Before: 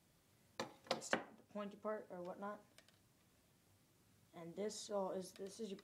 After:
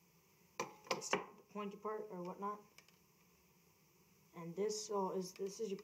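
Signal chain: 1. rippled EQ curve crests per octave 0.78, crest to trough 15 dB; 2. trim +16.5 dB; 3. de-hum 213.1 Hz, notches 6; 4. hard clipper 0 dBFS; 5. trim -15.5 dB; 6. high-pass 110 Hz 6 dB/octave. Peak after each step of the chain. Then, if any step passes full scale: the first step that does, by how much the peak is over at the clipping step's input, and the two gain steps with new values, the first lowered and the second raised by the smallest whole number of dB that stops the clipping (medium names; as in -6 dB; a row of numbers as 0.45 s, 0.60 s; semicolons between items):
-22.0 dBFS, -5.5 dBFS, -5.5 dBFS, -5.5 dBFS, -21.0 dBFS, -21.0 dBFS; nothing clips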